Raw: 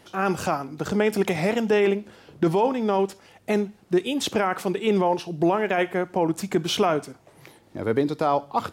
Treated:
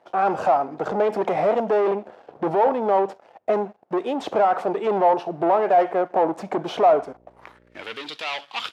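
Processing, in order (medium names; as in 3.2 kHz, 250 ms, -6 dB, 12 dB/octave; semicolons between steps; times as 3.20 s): waveshaping leveller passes 3; band-pass sweep 690 Hz -> 3.1 kHz, 7.29–7.88 s; 6.88–7.82 s: mains buzz 60 Hz, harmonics 10, -61 dBFS -1 dB/octave; trim +3.5 dB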